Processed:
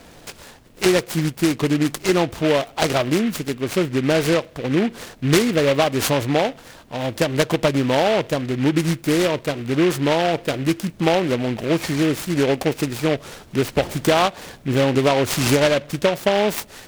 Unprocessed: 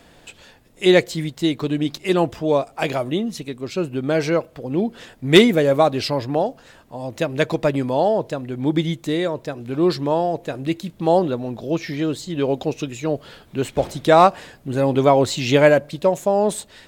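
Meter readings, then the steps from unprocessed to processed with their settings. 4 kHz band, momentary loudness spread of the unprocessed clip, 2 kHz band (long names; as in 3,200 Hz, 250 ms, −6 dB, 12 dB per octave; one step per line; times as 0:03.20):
+2.0 dB, 13 LU, +2.0 dB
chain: downward compressor 6 to 1, threshold −19 dBFS, peak gain reduction 12.5 dB
short delay modulated by noise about 2,000 Hz, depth 0.09 ms
level +5 dB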